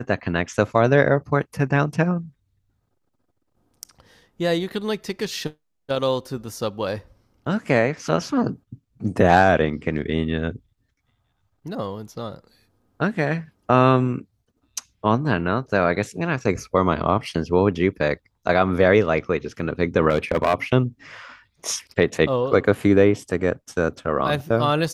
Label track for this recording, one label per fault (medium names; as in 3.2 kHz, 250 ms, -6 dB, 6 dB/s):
20.090000	20.540000	clipped -12.5 dBFS